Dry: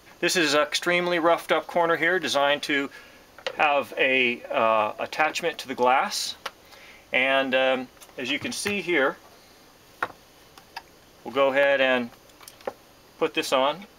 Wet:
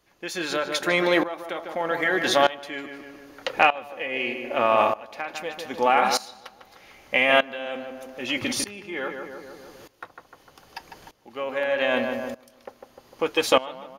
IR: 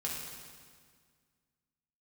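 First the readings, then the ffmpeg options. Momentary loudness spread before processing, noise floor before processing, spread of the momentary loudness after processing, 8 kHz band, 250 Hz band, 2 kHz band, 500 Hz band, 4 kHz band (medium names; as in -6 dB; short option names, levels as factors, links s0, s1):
17 LU, -54 dBFS, 20 LU, -1.0 dB, -1.0 dB, -1.5 dB, -1.0 dB, -1.5 dB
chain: -filter_complex "[0:a]asplit=2[s0][s1];[s1]adelay=151,lowpass=f=1900:p=1,volume=0.447,asplit=2[s2][s3];[s3]adelay=151,lowpass=f=1900:p=1,volume=0.54,asplit=2[s4][s5];[s5]adelay=151,lowpass=f=1900:p=1,volume=0.54,asplit=2[s6][s7];[s7]adelay=151,lowpass=f=1900:p=1,volume=0.54,asplit=2[s8][s9];[s9]adelay=151,lowpass=f=1900:p=1,volume=0.54,asplit=2[s10][s11];[s11]adelay=151,lowpass=f=1900:p=1,volume=0.54,asplit=2[s12][s13];[s13]adelay=151,lowpass=f=1900:p=1,volume=0.54[s14];[s2][s4][s6][s8][s10][s12][s14]amix=inputs=7:normalize=0[s15];[s0][s15]amix=inputs=2:normalize=0,aeval=exprs='val(0)*pow(10,-19*if(lt(mod(-0.81*n/s,1),2*abs(-0.81)/1000),1-mod(-0.81*n/s,1)/(2*abs(-0.81)/1000),(mod(-0.81*n/s,1)-2*abs(-0.81)/1000)/(1-2*abs(-0.81)/1000))/20)':c=same,volume=1.68"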